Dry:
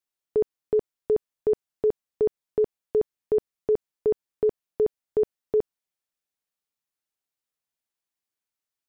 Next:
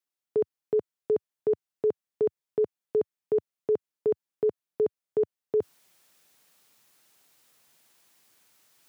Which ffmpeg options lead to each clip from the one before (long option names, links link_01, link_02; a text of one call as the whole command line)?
ffmpeg -i in.wav -af "highpass=frequency=100:width=0.5412,highpass=frequency=100:width=1.3066,areverse,acompressor=mode=upward:threshold=-39dB:ratio=2.5,areverse,volume=-2.5dB" out.wav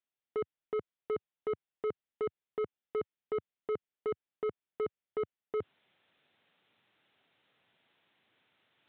ffmpeg -i in.wav -af "equalizer=frequency=1100:width_type=o:width=0.47:gain=-3.5,aresample=8000,asoftclip=type=tanh:threshold=-27.5dB,aresample=44100,volume=-2dB" out.wav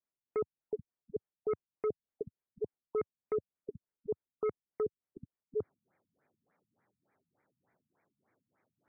ffmpeg -i in.wav -af "adynamicsmooth=sensitivity=8:basefreq=2700,afftfilt=real='re*lt(b*sr/1024,230*pow(2500/230,0.5+0.5*sin(2*PI*3.4*pts/sr)))':imag='im*lt(b*sr/1024,230*pow(2500/230,0.5+0.5*sin(2*PI*3.4*pts/sr)))':win_size=1024:overlap=0.75,volume=1dB" out.wav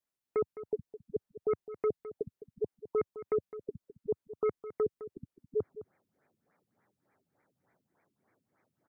ffmpeg -i in.wav -af "aecho=1:1:210:0.2,volume=3dB" out.wav